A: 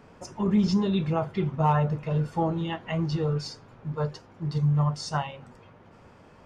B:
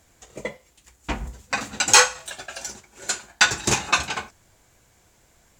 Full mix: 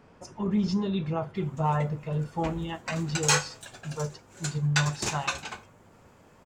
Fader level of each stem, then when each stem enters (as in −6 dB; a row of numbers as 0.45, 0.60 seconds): −3.5, −10.0 decibels; 0.00, 1.35 seconds